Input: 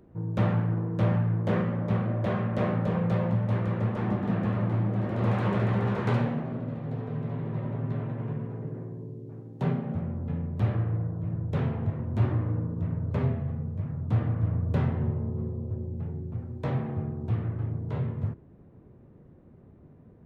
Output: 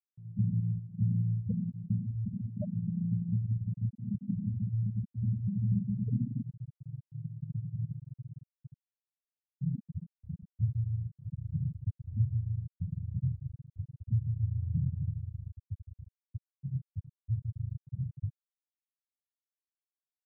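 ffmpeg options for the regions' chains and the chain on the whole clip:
ffmpeg -i in.wav -filter_complex "[0:a]asettb=1/sr,asplit=3[link_01][link_02][link_03];[link_01]atrim=end=5.424[link_04];[link_02]atrim=start=5.42:end=7.85,asetpts=PTS-STARTPTS,afade=type=in:duration=0.004:curve=qsin,afade=type=out:start_time=2.426:duration=0.004:curve=qsin,highshelf=frequency=2700:gain=-11.5,aecho=1:1:248|496|744|992:0.501|0.17|0.0579|0.0197,atrim=end_sample=107163[link_05];[link_03]atrim=start=7.846[link_06];[link_04][link_05]acrossfade=duration=0.004:curve1=hsin:curve2=qsin[link_07];[link_07][link_06]acrossfade=duration=0.004:curve1=qsin:curve2=hsin,lowpass=frequency=1300:poles=1,afftfilt=real='re*gte(hypot(re,im),0.316)':imag='im*gte(hypot(re,im),0.316)':win_size=1024:overlap=0.75,volume=-3.5dB" out.wav

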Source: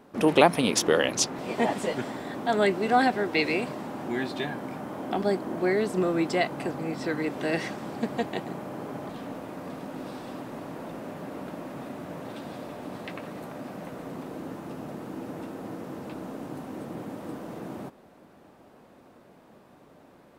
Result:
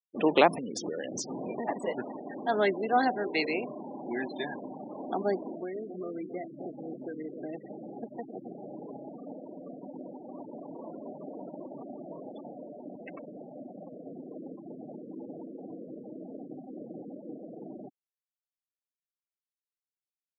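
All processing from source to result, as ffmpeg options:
ffmpeg -i in.wav -filter_complex "[0:a]asettb=1/sr,asplit=3[link_01][link_02][link_03];[link_01]atrim=end=0.514[link_04];[link_02]atrim=start=0.51:end=1.68,asetpts=PTS-STARTPTS,afade=type=in:duration=0.004:curve=qsin,afade=type=out:start_time=1.166:duration=0.004:curve=qsin,lowshelf=frequency=270:gain=9.5,acompressor=threshold=-26dB:ratio=20:attack=3.2:release=140:knee=1:detection=peak,acrusher=bits=7:mix=0:aa=0.5[link_05];[link_03]atrim=start=1.676[link_06];[link_04][link_05]acrossfade=duration=0.004:curve1=hsin:curve2=qsin[link_07];[link_07][link_06]acrossfade=duration=0.004:curve1=qsin:curve2=hsin,asettb=1/sr,asplit=3[link_08][link_09][link_10];[link_08]atrim=end=2.814[link_11];[link_09]atrim=start=2.81:end=3.81,asetpts=PTS-STARTPTS,afade=type=in:duration=0.004:curve=qsin,afade=type=out:start_time=0.996:duration=0.004:curve=qsin,bandreject=frequency=58.17:width_type=h:width=4,bandreject=frequency=116.34:width_type=h:width=4,bandreject=frequency=174.51:width_type=h:width=4,bandreject=frequency=232.68:width_type=h:width=4,bandreject=frequency=290.85:width_type=h:width=4,bandreject=frequency=349.02:width_type=h:width=4,bandreject=frequency=407.19:width_type=h:width=4,bandreject=frequency=465.36:width_type=h:width=4,bandreject=frequency=523.53:width_type=h:width=4,bandreject=frequency=581.7:width_type=h:width=4,bandreject=frequency=639.87:width_type=h:width=4,bandreject=frequency=698.04:width_type=h:width=4,bandreject=frequency=756.21:width_type=h:width=4,bandreject=frequency=814.38:width_type=h:width=4,bandreject=frequency=872.55:width_type=h:width=4,bandreject=frequency=930.72:width_type=h:width=4,bandreject=frequency=988.89:width_type=h:width=4,bandreject=frequency=1047.06:width_type=h:width=4,adynamicequalizer=threshold=0.0112:dfrequency=2200:dqfactor=1.2:tfrequency=2200:tqfactor=1.2:attack=5:release=100:ratio=0.375:range=2:mode=cutabove:tftype=bell[link_12];[link_10]atrim=start=3.806[link_13];[link_11][link_12]acrossfade=duration=0.004:curve1=hsin:curve2=qsin[link_14];[link_14][link_13]acrossfade=duration=0.004:curve1=qsin:curve2=hsin,asettb=1/sr,asplit=3[link_15][link_16][link_17];[link_15]atrim=end=5.484[link_18];[link_16]atrim=start=5.48:end=9.09,asetpts=PTS-STARTPTS,afade=type=in:duration=0.004:curve=qsin,afade=type=out:start_time=3.606:duration=0.004:curve=qsin,acrossover=split=310|800[link_19][link_20][link_21];[link_19]acompressor=threshold=-39dB:ratio=4[link_22];[link_20]acompressor=threshold=-38dB:ratio=4[link_23];[link_21]acompressor=threshold=-46dB:ratio=4[link_24];[link_22][link_23][link_24]amix=inputs=3:normalize=0,aecho=1:1:267|534|801:0.398|0.104|0.0269,atrim=end_sample=159201[link_25];[link_17]atrim=start=9.086[link_26];[link_18][link_25]acrossfade=duration=0.004:curve1=hsin:curve2=qsin[link_27];[link_27][link_26]acrossfade=duration=0.004:curve1=qsin:curve2=hsin,asettb=1/sr,asplit=3[link_28][link_29][link_30];[link_28]atrim=end=10.224[link_31];[link_29]atrim=start=10.22:end=12.56,asetpts=PTS-STARTPTS,afade=type=in:duration=0.004:curve=qsin,afade=type=out:start_time=2.336:duration=0.004:curve=qsin,highshelf=frequency=2200:gain=6.5,asplit=6[link_32][link_33][link_34][link_35][link_36][link_37];[link_33]adelay=179,afreqshift=56,volume=-10.5dB[link_38];[link_34]adelay=358,afreqshift=112,volume=-17.6dB[link_39];[link_35]adelay=537,afreqshift=168,volume=-24.8dB[link_40];[link_36]adelay=716,afreqshift=224,volume=-31.9dB[link_41];[link_37]adelay=895,afreqshift=280,volume=-39dB[link_42];[link_32][link_38][link_39][link_40][link_41][link_42]amix=inputs=6:normalize=0,atrim=end_sample=103194[link_43];[link_30]atrim=start=12.556[link_44];[link_31][link_43]acrossfade=duration=0.004:curve1=hsin:curve2=qsin[link_45];[link_45][link_44]acrossfade=duration=0.004:curve1=qsin:curve2=hsin,afftfilt=real='re*gte(hypot(re,im),0.0355)':imag='im*gte(hypot(re,im),0.0355)':win_size=1024:overlap=0.75,highpass=230,volume=-2.5dB" out.wav

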